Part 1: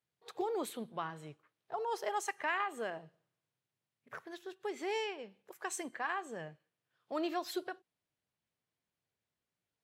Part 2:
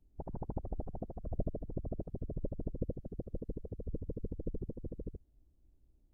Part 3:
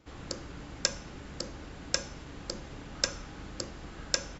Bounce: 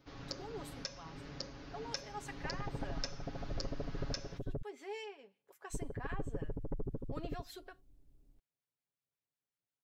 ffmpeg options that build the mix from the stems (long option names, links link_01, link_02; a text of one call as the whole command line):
ffmpeg -i stem1.wav -i stem2.wav -i stem3.wav -filter_complex "[0:a]acrossover=split=1200[link_01][link_02];[link_01]aeval=exprs='val(0)*(1-0.5/2+0.5/2*cos(2*PI*5.5*n/s))':channel_layout=same[link_03];[link_02]aeval=exprs='val(0)*(1-0.5/2-0.5/2*cos(2*PI*5.5*n/s))':channel_layout=same[link_04];[link_03][link_04]amix=inputs=2:normalize=0,volume=-8.5dB[link_05];[1:a]asoftclip=type=tanh:threshold=-34dB,adelay=2250,volume=2dB,asplit=3[link_06][link_07][link_08];[link_06]atrim=end=4.62,asetpts=PTS-STARTPTS,afade=type=out:start_time=4.616:duration=0.004:curve=hsin[link_09];[link_07]atrim=start=4.62:end=5.7,asetpts=PTS-STARTPTS,volume=0[link_10];[link_08]atrim=start=5.7,asetpts=PTS-STARTPTS,afade=type=in:duration=0.004:curve=hsin[link_11];[link_09][link_10][link_11]concat=n=3:v=0:a=1[link_12];[2:a]aexciter=amount=1.1:drive=1.2:freq=4200,volume=-5dB[link_13];[link_05][link_12][link_13]amix=inputs=3:normalize=0,aecho=1:1:7.2:0.57,alimiter=limit=-22dB:level=0:latency=1:release=374" out.wav